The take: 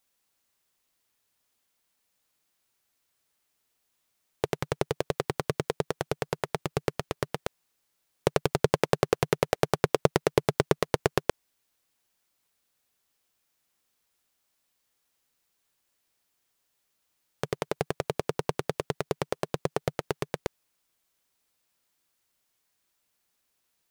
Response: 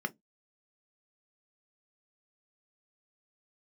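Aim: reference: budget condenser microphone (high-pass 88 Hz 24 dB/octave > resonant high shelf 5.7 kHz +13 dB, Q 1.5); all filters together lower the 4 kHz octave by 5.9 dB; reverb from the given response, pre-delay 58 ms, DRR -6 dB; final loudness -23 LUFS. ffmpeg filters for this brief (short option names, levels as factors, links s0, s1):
-filter_complex "[0:a]equalizer=f=4000:t=o:g=-7.5,asplit=2[s0][s1];[1:a]atrim=start_sample=2205,adelay=58[s2];[s1][s2]afir=irnorm=-1:irlink=0,volume=1.26[s3];[s0][s3]amix=inputs=2:normalize=0,highpass=f=88:w=0.5412,highpass=f=88:w=1.3066,highshelf=f=5700:t=q:w=1.5:g=13"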